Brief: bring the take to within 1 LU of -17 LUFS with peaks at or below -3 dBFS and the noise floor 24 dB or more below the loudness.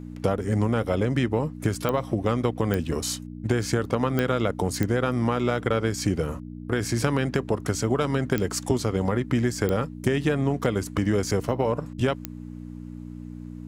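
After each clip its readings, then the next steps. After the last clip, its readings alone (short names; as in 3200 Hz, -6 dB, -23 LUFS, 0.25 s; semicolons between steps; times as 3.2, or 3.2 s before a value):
clicks 7; hum 60 Hz; harmonics up to 300 Hz; hum level -35 dBFS; loudness -25.5 LUFS; peak -7.5 dBFS; loudness target -17.0 LUFS
-> de-click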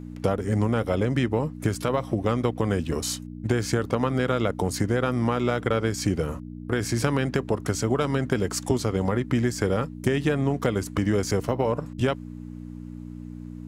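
clicks 0; hum 60 Hz; harmonics up to 300 Hz; hum level -35 dBFS
-> de-hum 60 Hz, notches 5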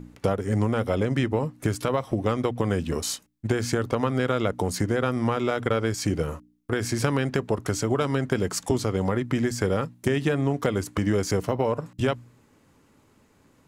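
hum none; loudness -26.0 LUFS; peak -9.0 dBFS; loudness target -17.0 LUFS
-> gain +9 dB; limiter -3 dBFS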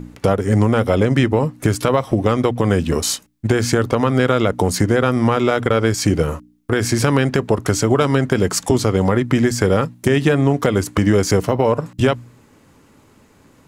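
loudness -17.5 LUFS; peak -3.0 dBFS; noise floor -52 dBFS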